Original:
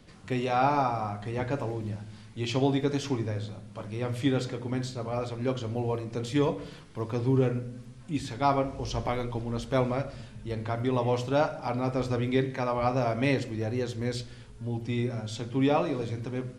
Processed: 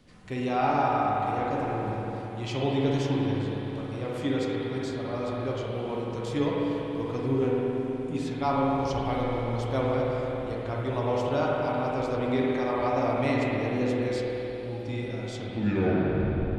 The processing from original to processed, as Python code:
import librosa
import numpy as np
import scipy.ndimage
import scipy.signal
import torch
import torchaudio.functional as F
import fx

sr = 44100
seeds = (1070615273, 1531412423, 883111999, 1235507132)

y = fx.tape_stop_end(x, sr, length_s=1.22)
y = fx.rev_spring(y, sr, rt60_s=3.9, pass_ms=(48, 52), chirp_ms=65, drr_db=-4.0)
y = y * librosa.db_to_amplitude(-4.0)